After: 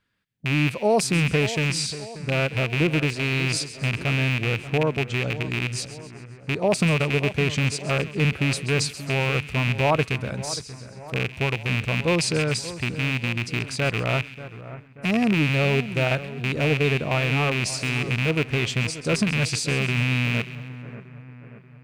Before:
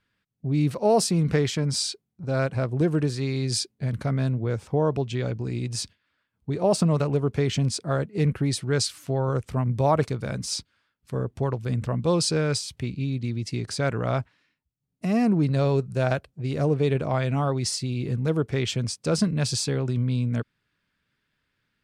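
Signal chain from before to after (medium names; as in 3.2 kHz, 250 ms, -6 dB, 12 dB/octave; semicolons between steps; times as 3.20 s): rattle on loud lows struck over -25 dBFS, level -14 dBFS; band-stop 5.4 kHz, Q 27; on a send: two-band feedback delay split 1.8 kHz, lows 584 ms, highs 133 ms, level -14 dB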